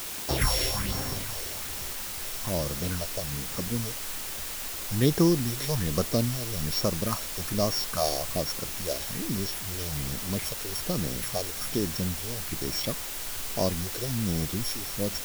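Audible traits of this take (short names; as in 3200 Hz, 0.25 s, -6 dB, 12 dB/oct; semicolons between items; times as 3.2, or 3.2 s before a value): a buzz of ramps at a fixed pitch in blocks of 8 samples; phasing stages 4, 1.2 Hz, lowest notch 180–3300 Hz; a quantiser's noise floor 6-bit, dither triangular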